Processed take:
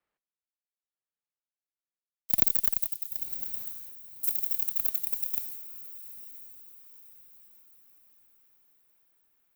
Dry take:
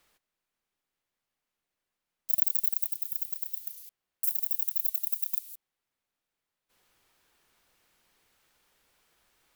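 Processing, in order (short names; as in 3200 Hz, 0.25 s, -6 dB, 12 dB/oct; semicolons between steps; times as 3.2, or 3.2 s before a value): one diode to ground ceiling -7.5 dBFS; diffused feedback echo 1.05 s, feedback 57%, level -7 dB; three-band expander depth 70%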